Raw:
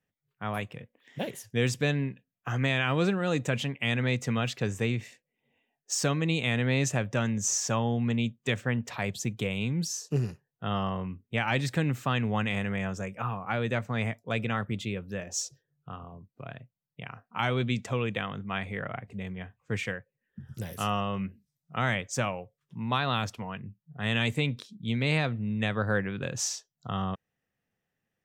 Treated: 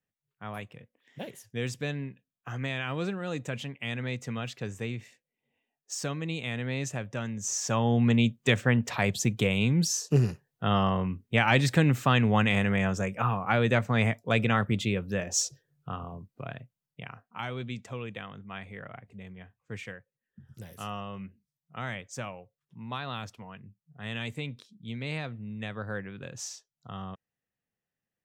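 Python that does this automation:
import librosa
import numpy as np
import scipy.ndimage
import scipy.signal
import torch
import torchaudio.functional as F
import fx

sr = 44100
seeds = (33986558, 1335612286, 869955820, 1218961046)

y = fx.gain(x, sr, db=fx.line((7.38, -6.0), (7.99, 5.0), (16.14, 5.0), (17.13, -1.5), (17.47, -8.0)))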